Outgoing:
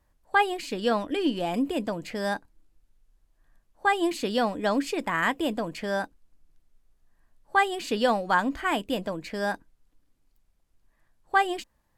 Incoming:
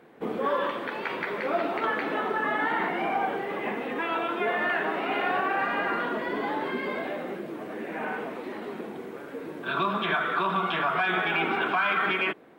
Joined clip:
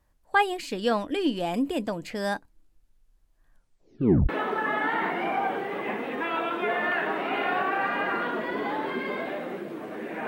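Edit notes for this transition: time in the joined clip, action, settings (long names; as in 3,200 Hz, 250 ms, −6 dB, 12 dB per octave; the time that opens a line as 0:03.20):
outgoing
0:03.51: tape stop 0.78 s
0:04.29: continue with incoming from 0:02.07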